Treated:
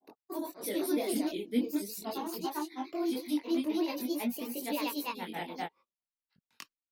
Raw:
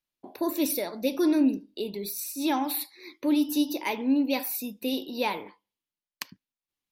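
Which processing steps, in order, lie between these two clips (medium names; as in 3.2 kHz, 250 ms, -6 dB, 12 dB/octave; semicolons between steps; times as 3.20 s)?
granulator 100 ms, grains 28 per s, spray 523 ms, pitch spread up and down by 3 st; gate -56 dBFS, range -11 dB; chorus voices 2, 0.43 Hz, delay 22 ms, depth 2.1 ms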